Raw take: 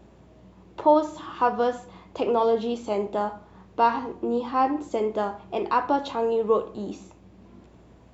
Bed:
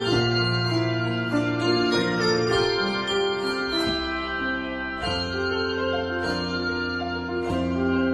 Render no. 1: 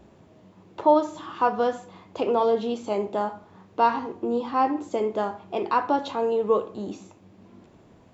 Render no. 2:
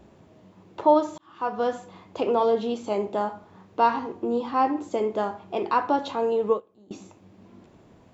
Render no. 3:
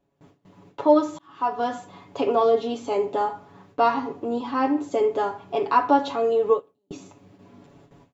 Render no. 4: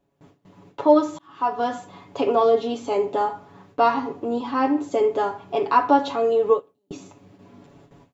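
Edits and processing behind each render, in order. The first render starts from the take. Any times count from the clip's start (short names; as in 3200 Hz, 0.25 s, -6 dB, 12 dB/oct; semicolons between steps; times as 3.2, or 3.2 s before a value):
de-hum 60 Hz, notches 3
1.18–1.74 fade in; 6.5–6.91 upward expander 2.5:1, over -31 dBFS
gate with hold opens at -43 dBFS; comb 7.1 ms, depth 86%
gain +1.5 dB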